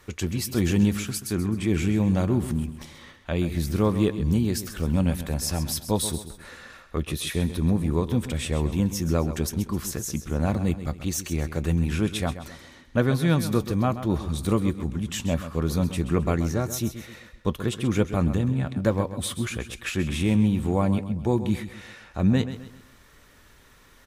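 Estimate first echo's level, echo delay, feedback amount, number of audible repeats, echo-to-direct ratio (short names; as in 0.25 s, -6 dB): -12.0 dB, 0.131 s, 38%, 3, -11.5 dB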